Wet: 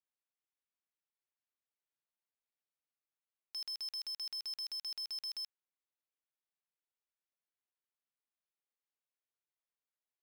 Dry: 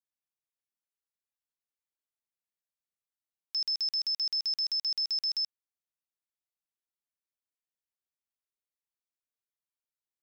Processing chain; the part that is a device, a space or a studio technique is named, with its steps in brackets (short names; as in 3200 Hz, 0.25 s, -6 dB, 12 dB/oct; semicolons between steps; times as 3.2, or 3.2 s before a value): early digital voice recorder (BPF 270–3400 Hz; block floating point 3-bit); gain -2 dB